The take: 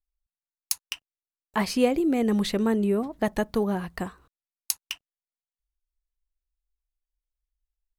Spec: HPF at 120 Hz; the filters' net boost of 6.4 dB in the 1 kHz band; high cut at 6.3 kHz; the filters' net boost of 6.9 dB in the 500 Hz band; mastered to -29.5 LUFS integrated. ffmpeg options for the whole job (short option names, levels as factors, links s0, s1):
-af "highpass=120,lowpass=6300,equalizer=f=500:t=o:g=7,equalizer=f=1000:t=o:g=5.5,volume=0.398"